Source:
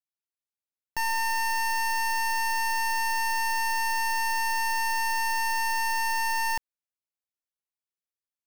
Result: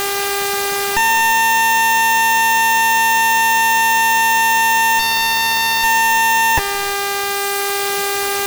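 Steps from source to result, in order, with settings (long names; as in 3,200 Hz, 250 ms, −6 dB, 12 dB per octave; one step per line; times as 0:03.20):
stylus tracing distortion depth 0.29 ms
reverb reduction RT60 1.1 s
0:04.99–0:05.84: bass and treble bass +8 dB, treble −8 dB
brickwall limiter −29.5 dBFS, peak gain reduction 6 dB
power curve on the samples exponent 0.35
hum with harmonics 400 Hz, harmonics 39, −50 dBFS −4 dB per octave
fuzz pedal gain 46 dB, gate −54 dBFS
convolution reverb, pre-delay 75 ms, DRR 13 dB
level +1.5 dB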